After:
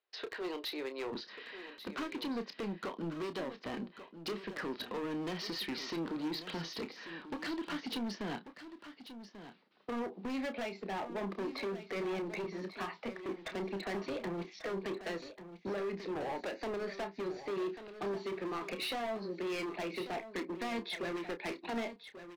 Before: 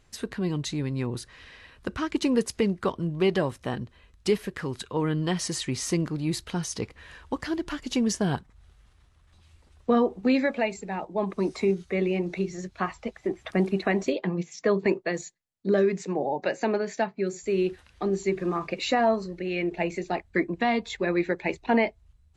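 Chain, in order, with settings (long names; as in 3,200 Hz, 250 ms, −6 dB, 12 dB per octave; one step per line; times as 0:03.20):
Butterworth low-pass 4,800 Hz 48 dB per octave
noise gate −56 dBFS, range −21 dB
Butterworth high-pass 370 Hz 36 dB per octave, from 0:01.11 200 Hz
downward compressor 12 to 1, threshold −28 dBFS, peak gain reduction 11.5 dB
hard clipping −34.5 dBFS, distortion −7 dB
double-tracking delay 30 ms −10 dB
single-tap delay 1,140 ms −12 dB
level −1 dB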